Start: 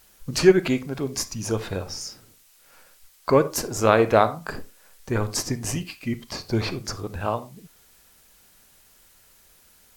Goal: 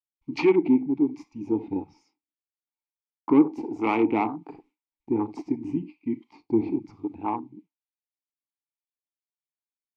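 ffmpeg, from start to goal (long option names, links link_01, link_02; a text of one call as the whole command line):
ffmpeg -i in.wav -filter_complex "[0:a]acrossover=split=460[link_01][link_02];[link_01]aeval=exprs='val(0)*(1-0.5/2+0.5/2*cos(2*PI*1.2*n/s))':channel_layout=same[link_03];[link_02]aeval=exprs='val(0)*(1-0.5/2-0.5/2*cos(2*PI*1.2*n/s))':channel_layout=same[link_04];[link_03][link_04]amix=inputs=2:normalize=0,afwtdn=0.0316,asplit=2[link_05][link_06];[link_06]adynamicsmooth=sensitivity=7:basefreq=6700,volume=2.5dB[link_07];[link_05][link_07]amix=inputs=2:normalize=0,lowshelf=frequency=200:gain=-5.5,agate=range=-33dB:threshold=-42dB:ratio=3:detection=peak,acontrast=84,asplit=3[link_08][link_09][link_10];[link_08]bandpass=frequency=300:width_type=q:width=8,volume=0dB[link_11];[link_09]bandpass=frequency=870:width_type=q:width=8,volume=-6dB[link_12];[link_10]bandpass=frequency=2240:width_type=q:width=8,volume=-9dB[link_13];[link_11][link_12][link_13]amix=inputs=3:normalize=0,volume=2.5dB" out.wav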